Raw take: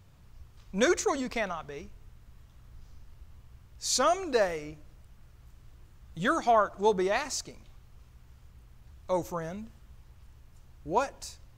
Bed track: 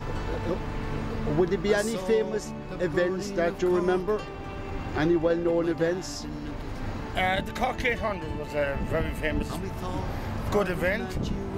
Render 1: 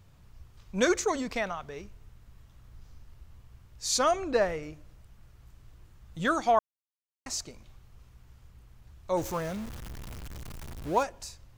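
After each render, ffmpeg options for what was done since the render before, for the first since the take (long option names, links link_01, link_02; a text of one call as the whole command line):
ffmpeg -i in.wav -filter_complex "[0:a]asettb=1/sr,asplit=3[link_01][link_02][link_03];[link_01]atrim=end=4.114[link_04];[link_02]atrim=start=4.11:end=4.63,asetpts=PTS-STARTPTS,afade=type=in:duration=0.004:curve=qsin,afade=type=out:start_time=0.516:duration=0.004:curve=qsin,bass=frequency=250:gain=5,treble=frequency=4000:gain=-7[link_05];[link_03]atrim=start=4.626[link_06];[link_04][link_05]acrossfade=duration=0.004:curve1=hsin:curve2=qsin[link_07];[link_07][link_06]acrossfade=duration=0.004:curve1=qsin:curve2=hsin,asettb=1/sr,asplit=3[link_08][link_09][link_10];[link_08]atrim=end=9.174[link_11];[link_09]atrim=start=9.17:end=11.03,asetpts=PTS-STARTPTS,afade=type=in:duration=0.004:curve=qsin,afade=type=out:start_time=1.856:duration=0.004:curve=qsin,aeval=exprs='val(0)+0.5*0.015*sgn(val(0))':channel_layout=same[link_12];[link_10]atrim=start=11.026[link_13];[link_11][link_12]acrossfade=duration=0.004:curve1=hsin:curve2=qsin[link_14];[link_14][link_13]acrossfade=duration=0.004:curve1=qsin:curve2=hsin,asplit=3[link_15][link_16][link_17];[link_15]atrim=end=6.59,asetpts=PTS-STARTPTS,afade=type=out:start_time=6.586:duration=0.004:curve=hsin[link_18];[link_16]atrim=start=6.59:end=7.26,asetpts=PTS-STARTPTS,volume=0[link_19];[link_17]atrim=start=7.26,asetpts=PTS-STARTPTS,afade=type=in:duration=0.004:curve=hsin[link_20];[link_18][link_19][link_20]concat=n=3:v=0:a=1" out.wav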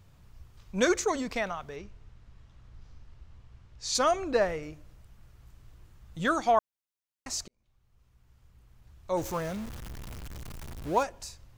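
ffmpeg -i in.wav -filter_complex "[0:a]asettb=1/sr,asplit=3[link_01][link_02][link_03];[link_01]atrim=end=1.764[link_04];[link_02]atrim=start=1.76:end=3.95,asetpts=PTS-STARTPTS,afade=type=in:duration=0.004:curve=qsin,afade=type=out:start_time=2.186:duration=0.004:curve=qsin,lowpass=5800[link_05];[link_03]atrim=start=3.946[link_06];[link_04][link_05]acrossfade=duration=0.004:curve1=hsin:curve2=qsin[link_07];[link_07][link_06]acrossfade=duration=0.004:curve1=qsin:curve2=hsin,asplit=2[link_08][link_09];[link_08]atrim=end=7.48,asetpts=PTS-STARTPTS,afade=type=out:start_time=7.476:duration=0.004:curve=hsin[link_10];[link_09]atrim=start=7.48,asetpts=PTS-STARTPTS,afade=type=in:duration=1.88[link_11];[link_10][link_11]concat=n=2:v=0:a=1" out.wav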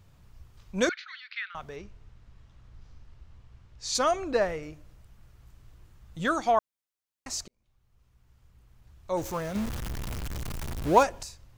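ffmpeg -i in.wav -filter_complex "[0:a]asettb=1/sr,asplit=3[link_01][link_02][link_03];[link_01]atrim=end=0.894[link_04];[link_02]atrim=start=0.89:end=1.55,asetpts=PTS-STARTPTS,afade=type=in:duration=0.004:curve=qsin,afade=type=out:start_time=0.656:duration=0.004:curve=qsin,asuperpass=centerf=2500:order=12:qfactor=0.82[link_05];[link_03]atrim=start=1.546[link_06];[link_04][link_05]acrossfade=duration=0.004:curve1=hsin:curve2=qsin[link_07];[link_07][link_06]acrossfade=duration=0.004:curve1=qsin:curve2=hsin,asettb=1/sr,asplit=3[link_08][link_09][link_10];[link_08]atrim=end=9.554[link_11];[link_09]atrim=start=9.55:end=11.23,asetpts=PTS-STARTPTS,afade=type=in:duration=0.004:curve=qsin,afade=type=out:start_time=1.676:duration=0.004:curve=qsin,acontrast=80[link_12];[link_10]atrim=start=11.226[link_13];[link_11][link_12]acrossfade=duration=0.004:curve1=hsin:curve2=qsin[link_14];[link_14][link_13]acrossfade=duration=0.004:curve1=qsin:curve2=hsin" out.wav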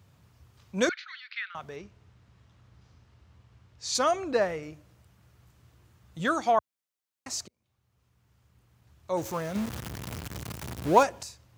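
ffmpeg -i in.wav -af "highpass=frequency=79:width=0.5412,highpass=frequency=79:width=1.3066" out.wav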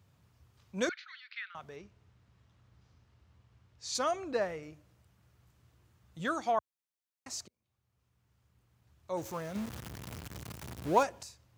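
ffmpeg -i in.wav -af "volume=-6.5dB" out.wav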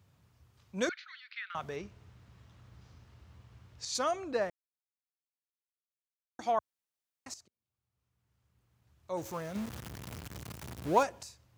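ffmpeg -i in.wav -filter_complex "[0:a]asplit=6[link_01][link_02][link_03][link_04][link_05][link_06];[link_01]atrim=end=1.502[link_07];[link_02]atrim=start=1.498:end=3.852,asetpts=PTS-STARTPTS,volume=8dB[link_08];[link_03]atrim=start=3.848:end=4.5,asetpts=PTS-STARTPTS,afade=type=out:start_time=0.648:duration=0.004:curve=hsin[link_09];[link_04]atrim=start=4.5:end=6.39,asetpts=PTS-STARTPTS,volume=0[link_10];[link_05]atrim=start=6.39:end=7.34,asetpts=PTS-STARTPTS,afade=type=in:duration=0.004:curve=hsin,afade=type=out:start_time=0.946:duration=0.004:curve=hsin:silence=0.177828[link_11];[link_06]atrim=start=7.34,asetpts=PTS-STARTPTS,afade=type=in:duration=1.96:silence=0.177828[link_12];[link_07][link_08]acrossfade=duration=0.004:curve1=hsin:curve2=hsin[link_13];[link_09][link_10][link_11][link_12]concat=n=4:v=0:a=1[link_14];[link_13][link_14]acrossfade=duration=0.004:curve1=hsin:curve2=hsin" out.wav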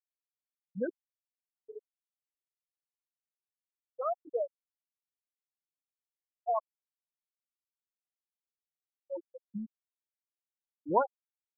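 ffmpeg -i in.wav -af "lowpass=frequency=3200:poles=1,afftfilt=real='re*gte(hypot(re,im),0.126)':imag='im*gte(hypot(re,im),0.126)':win_size=1024:overlap=0.75" out.wav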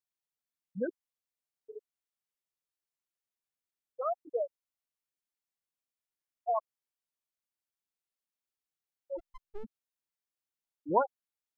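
ffmpeg -i in.wav -filter_complex "[0:a]asplit=3[link_01][link_02][link_03];[link_01]afade=type=out:start_time=9.18:duration=0.02[link_04];[link_02]aeval=exprs='abs(val(0))':channel_layout=same,afade=type=in:start_time=9.18:duration=0.02,afade=type=out:start_time=9.63:duration=0.02[link_05];[link_03]afade=type=in:start_time=9.63:duration=0.02[link_06];[link_04][link_05][link_06]amix=inputs=3:normalize=0" out.wav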